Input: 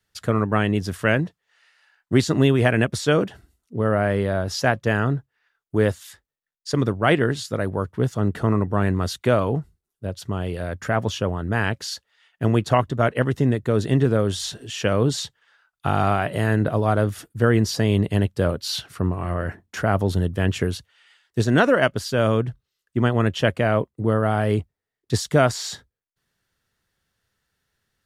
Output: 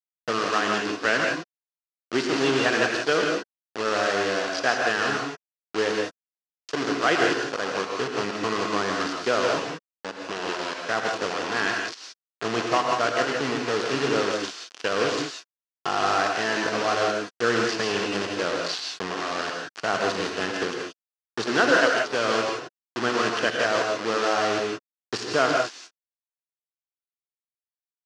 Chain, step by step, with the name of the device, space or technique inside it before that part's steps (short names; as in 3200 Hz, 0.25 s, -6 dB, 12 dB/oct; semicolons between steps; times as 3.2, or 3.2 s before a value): hand-held game console (bit-crush 4-bit; speaker cabinet 450–5600 Hz, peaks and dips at 590 Hz -6 dB, 870 Hz -4 dB, 2200 Hz -5 dB, 3700 Hz -5 dB); non-linear reverb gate 0.2 s rising, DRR 1 dB